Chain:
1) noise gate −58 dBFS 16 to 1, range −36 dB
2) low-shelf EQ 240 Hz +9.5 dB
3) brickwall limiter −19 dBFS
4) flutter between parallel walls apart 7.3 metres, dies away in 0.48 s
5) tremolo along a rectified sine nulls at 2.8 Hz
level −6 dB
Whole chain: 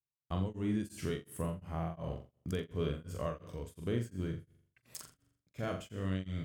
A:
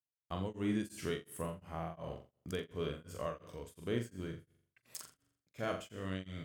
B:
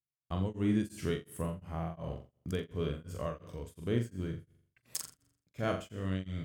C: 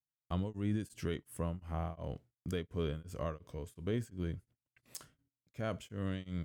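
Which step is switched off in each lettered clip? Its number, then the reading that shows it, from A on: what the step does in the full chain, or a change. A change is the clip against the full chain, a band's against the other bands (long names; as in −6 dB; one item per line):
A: 2, 125 Hz band −6.5 dB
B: 3, change in crest factor +5.5 dB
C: 4, change in crest factor −2.0 dB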